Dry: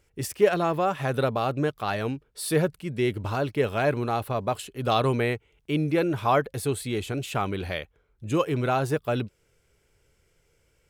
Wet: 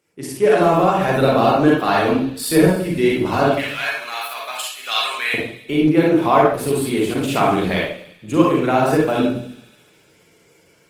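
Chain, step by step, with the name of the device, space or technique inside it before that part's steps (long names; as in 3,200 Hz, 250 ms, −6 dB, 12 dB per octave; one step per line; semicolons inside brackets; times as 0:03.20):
0:03.48–0:05.34: Chebyshev high-pass filter 2,200 Hz, order 2
delay with a high-pass on its return 71 ms, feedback 78%, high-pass 2,800 Hz, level −13 dB
far-field microphone of a smart speaker (convolution reverb RT60 0.55 s, pre-delay 39 ms, DRR −3.5 dB; high-pass filter 150 Hz 24 dB per octave; automatic gain control gain up to 10 dB; Opus 20 kbit/s 48,000 Hz)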